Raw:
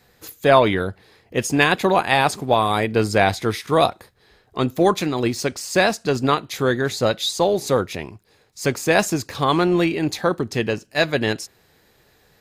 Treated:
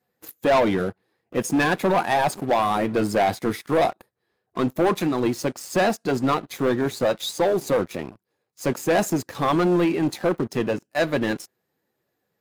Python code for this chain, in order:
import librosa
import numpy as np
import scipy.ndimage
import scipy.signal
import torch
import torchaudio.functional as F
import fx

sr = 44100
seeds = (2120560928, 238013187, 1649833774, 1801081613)

y = fx.spec_quant(x, sr, step_db=15)
y = scipy.signal.sosfilt(scipy.signal.butter(2, 160.0, 'highpass', fs=sr, output='sos'), y)
y = fx.peak_eq(y, sr, hz=4200.0, db=-9.0, octaves=2.5)
y = fx.notch(y, sr, hz=430.0, q=12.0)
y = fx.leveller(y, sr, passes=3)
y = F.gain(torch.from_numpy(y), -8.5).numpy()